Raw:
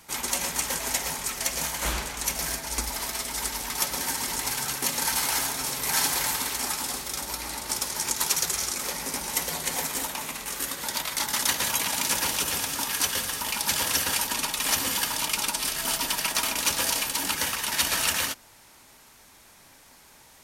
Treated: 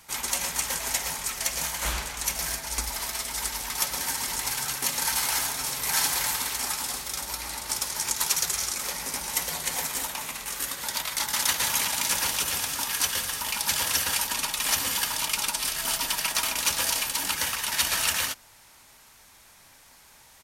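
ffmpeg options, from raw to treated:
ffmpeg -i in.wav -filter_complex "[0:a]asplit=2[link_01][link_02];[link_02]afade=type=in:start_time=10.95:duration=0.01,afade=type=out:start_time=11.43:duration=0.01,aecho=0:1:430|860|1290|1720|2150|2580:0.595662|0.297831|0.148916|0.0744578|0.0372289|0.0186144[link_03];[link_01][link_03]amix=inputs=2:normalize=0,equalizer=frequency=300:width_type=o:width=1.9:gain=-6" out.wav

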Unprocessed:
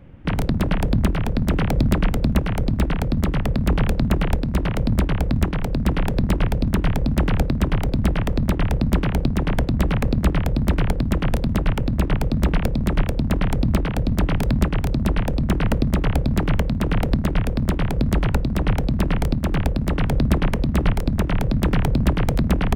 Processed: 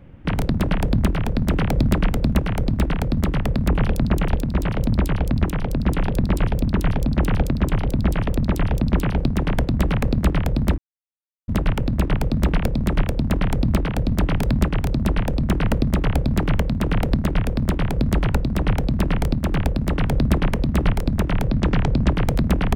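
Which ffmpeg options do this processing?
ffmpeg -i in.wav -filter_complex "[0:a]asettb=1/sr,asplit=3[link_01][link_02][link_03];[link_01]atrim=end=3.684[link_04];[link_02]atrim=start=3.68:end=9.18,asetpts=PTS-STARTPTS,afade=type=in:duration=0.004:curve=qsin,afade=type=out:start_time=5.496:duration=0.004:curve=qsin,acrossover=split=3700[link_05][link_06];[link_06]adelay=70[link_07];[link_05][link_07]amix=inputs=2:normalize=0,atrim=end_sample=242550[link_08];[link_03]atrim=start=9.176[link_09];[link_04][link_08]acrossfade=duration=0.004:curve1=hsin:curve2=qsin[link_10];[link_10][link_09]acrossfade=duration=0.004:curve1=qsin:curve2=hsin,asplit=3[link_11][link_12][link_13];[link_11]afade=type=out:start_time=21.5:duration=0.02[link_14];[link_12]lowpass=frequency=7000:width=0.5412,lowpass=frequency=7000:width=1.3066,afade=type=in:start_time=21.5:duration=0.02,afade=type=out:start_time=22.14:duration=0.02[link_15];[link_13]afade=type=in:start_time=22.14:duration=0.02[link_16];[link_14][link_15][link_16]amix=inputs=3:normalize=0,asplit=3[link_17][link_18][link_19];[link_17]atrim=end=10.78,asetpts=PTS-STARTPTS,afade=type=out:start_time=10.776:duration=0.004:curve=hsin[link_20];[link_18]atrim=start=10.78:end=11.48,asetpts=PTS-STARTPTS,volume=0[link_21];[link_19]atrim=start=11.48,asetpts=PTS-STARTPTS,afade=type=in:duration=0.004:curve=hsin[link_22];[link_20][link_21][link_22]concat=n=3:v=0:a=1" out.wav

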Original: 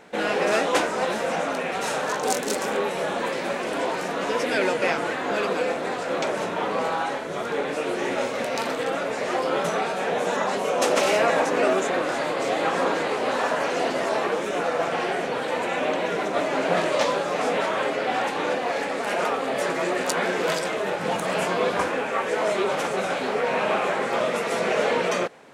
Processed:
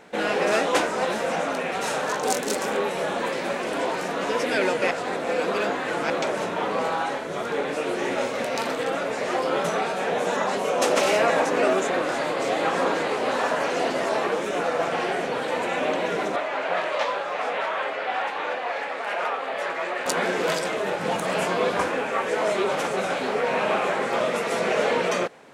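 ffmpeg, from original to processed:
ffmpeg -i in.wav -filter_complex "[0:a]asettb=1/sr,asplit=3[link_01][link_02][link_03];[link_01]atrim=end=16.364[link_04];[link_02]atrim=start=16.36:end=20.06,asetpts=PTS-STARTPTS,afade=type=in:duration=0.004:curve=qsin,afade=type=out:start_time=3.696:duration=0.004:curve=qsin,acrossover=split=540 3700:gain=0.178 1 0.224[link_05][link_06][link_07];[link_05][link_06][link_07]amix=inputs=3:normalize=0[link_08];[link_03]atrim=start=20.056[link_09];[link_04][link_08]acrossfade=duration=0.004:curve1=hsin:curve2=qsin[link_10];[link_10][link_09]acrossfade=duration=0.004:curve1=qsin:curve2=hsin,asplit=3[link_11][link_12][link_13];[link_11]atrim=end=4.912[link_14];[link_12]atrim=start=4.908:end=6.102,asetpts=PTS-STARTPTS,areverse[link_15];[link_13]atrim=start=6.098[link_16];[link_14][link_15]acrossfade=duration=0.004:curve1=hsin:curve2=hsin[link_17];[link_17][link_16]acrossfade=duration=0.004:curve1=hsin:curve2=hsin" out.wav

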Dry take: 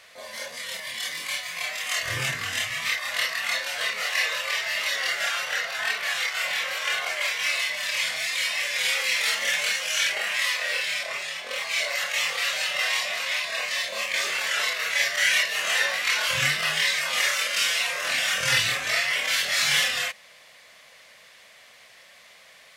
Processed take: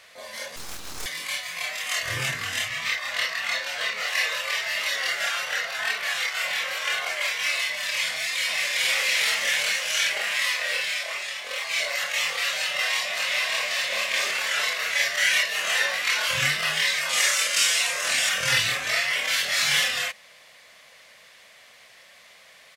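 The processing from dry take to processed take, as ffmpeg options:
ffmpeg -i in.wav -filter_complex "[0:a]asettb=1/sr,asplit=3[link_01][link_02][link_03];[link_01]atrim=end=0.564[link_04];[link_02]atrim=start=0.56:end=1.06,asetpts=PTS-STARTPTS,afade=type=in:duration=0.004:curve=qsin,afade=type=out:start_time=0.496:duration=0.004:curve=qsin,aeval=exprs='abs(val(0))':channel_layout=same[link_05];[link_03]atrim=start=1.056[link_06];[link_04][link_05]acrossfade=duration=0.004:curve1=hsin:curve2=qsin[link_07];[link_07][link_06]acrossfade=duration=0.004:curve1=qsin:curve2=hsin,asettb=1/sr,asplit=3[link_08][link_09][link_10];[link_08]atrim=end=2.684[link_11];[link_09]atrim=start=2.68:end=4.08,asetpts=PTS-STARTPTS,afade=type=in:duration=0.004:curve=qsin,afade=type=out:start_time=1.396:duration=0.004:curve=qsin,equalizer=frequency=11000:width_type=o:width=0.79:gain=-7.5[link_12];[link_10]atrim=start=4.076[link_13];[link_11][link_12]acrossfade=duration=0.004:curve1=hsin:curve2=qsin[link_14];[link_14][link_13]acrossfade=duration=0.004:curve1=qsin:curve2=hsin,asplit=2[link_15][link_16];[link_16]afade=type=in:start_time=8.1:duration=0.01,afade=type=out:start_time=8.86:duration=0.01,aecho=0:1:380|760|1140|1520|1900|2280|2660|3040|3420|3800|4180|4560:0.707946|0.530959|0.39822|0.298665|0.223998|0.167999|0.125999|0.0944994|0.0708745|0.0531559|0.0398669|0.0299002[link_17];[link_15][link_17]amix=inputs=2:normalize=0,asettb=1/sr,asplit=3[link_18][link_19][link_20];[link_18]atrim=end=10.894[link_21];[link_19]atrim=start=10.89:end=11.7,asetpts=PTS-STARTPTS,afade=type=in:duration=0.004:curve=qsin,afade=type=out:start_time=0.806:duration=0.004:curve=qsin,highpass=frequency=410:poles=1[link_22];[link_20]atrim=start=11.696[link_23];[link_21][link_22]acrossfade=duration=0.004:curve1=hsin:curve2=qsin[link_24];[link_24][link_23]acrossfade=duration=0.004:curve1=qsin:curve2=hsin,asplit=2[link_25][link_26];[link_26]afade=type=in:start_time=12.57:duration=0.01,afade=type=out:start_time=13.72:duration=0.01,aecho=0:1:590|1180|1770|2360|2950|3540|4130:0.668344|0.334172|0.167086|0.083543|0.0417715|0.0208857|0.0104429[link_27];[link_25][link_27]amix=inputs=2:normalize=0,asettb=1/sr,asplit=3[link_28][link_29][link_30];[link_28]atrim=end=17.094[link_31];[link_29]atrim=start=17.09:end=18.29,asetpts=PTS-STARTPTS,afade=type=in:duration=0.004:curve=qsin,afade=type=out:start_time=1.196:duration=0.004:curve=qsin,equalizer=frequency=7900:width_type=o:width=1.1:gain=8[link_32];[link_30]atrim=start=18.286[link_33];[link_31][link_32]acrossfade=duration=0.004:curve1=hsin:curve2=qsin[link_34];[link_34][link_33]acrossfade=duration=0.004:curve1=qsin:curve2=hsin" out.wav

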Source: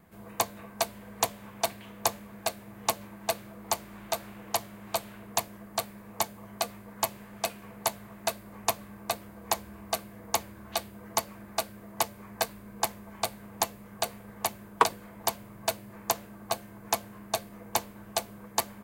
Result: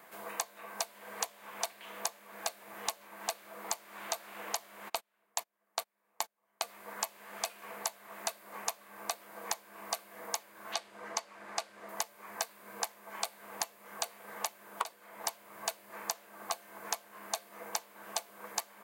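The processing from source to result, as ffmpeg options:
ffmpeg -i in.wav -filter_complex "[0:a]asplit=3[link_01][link_02][link_03];[link_01]afade=type=out:start_time=4.88:duration=0.02[link_04];[link_02]agate=range=-30dB:threshold=-35dB:ratio=16:release=100:detection=peak,afade=type=in:start_time=4.88:duration=0.02,afade=type=out:start_time=6.65:duration=0.02[link_05];[link_03]afade=type=in:start_time=6.65:duration=0.02[link_06];[link_04][link_05][link_06]amix=inputs=3:normalize=0,asettb=1/sr,asplit=3[link_07][link_08][link_09];[link_07]atrim=end=10.744[link_10];[link_08]atrim=start=10.74:end=11.89,asetpts=PTS-STARTPTS,afade=type=in:duration=0.004:curve=qsin,afade=type=out:start_time=1.146:duration=0.004:curve=qsin,lowpass=7000[link_11];[link_09]atrim=start=11.886[link_12];[link_10][link_11]acrossfade=duration=0.004:curve1=hsin:curve2=qsin[link_13];[link_13][link_12]acrossfade=duration=0.004:curve1=qsin:curve2=hsin,highpass=620,acompressor=threshold=-42dB:ratio=12,volume=9dB" out.wav

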